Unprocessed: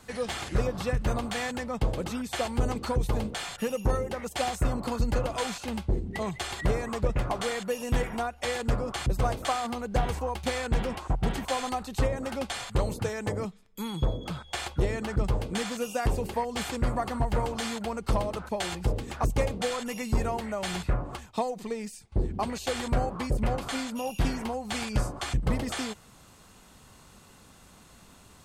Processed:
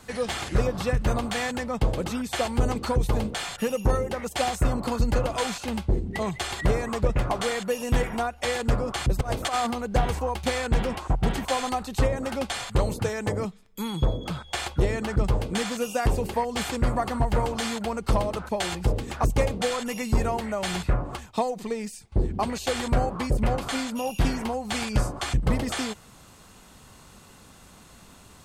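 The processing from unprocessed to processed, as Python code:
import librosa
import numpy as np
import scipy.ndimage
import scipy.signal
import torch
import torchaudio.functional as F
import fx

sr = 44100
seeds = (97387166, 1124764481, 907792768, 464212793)

y = fx.over_compress(x, sr, threshold_db=-29.0, ratio=-0.5, at=(9.21, 9.71))
y = y * librosa.db_to_amplitude(3.5)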